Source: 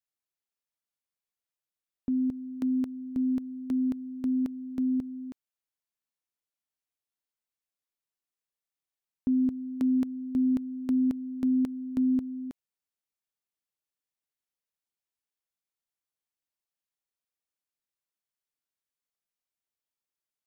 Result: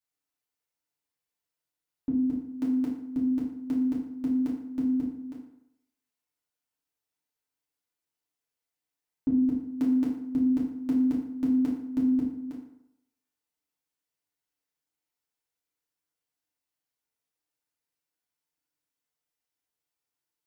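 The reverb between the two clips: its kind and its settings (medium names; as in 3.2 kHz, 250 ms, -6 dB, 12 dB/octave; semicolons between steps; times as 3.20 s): FDN reverb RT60 0.79 s, low-frequency decay 0.9×, high-frequency decay 0.65×, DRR -6 dB; trim -3 dB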